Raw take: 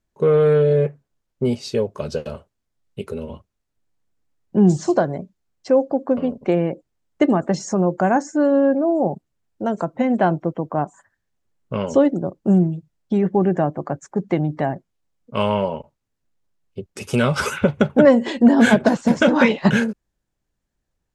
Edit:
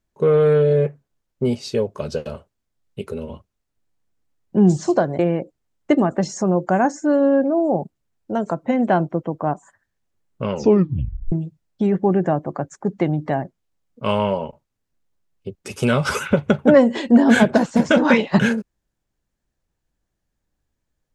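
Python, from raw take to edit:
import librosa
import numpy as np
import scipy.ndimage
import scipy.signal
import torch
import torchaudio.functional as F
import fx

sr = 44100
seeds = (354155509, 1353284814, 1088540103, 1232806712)

y = fx.edit(x, sr, fx.cut(start_s=5.19, length_s=1.31),
    fx.tape_stop(start_s=11.83, length_s=0.8), tone=tone)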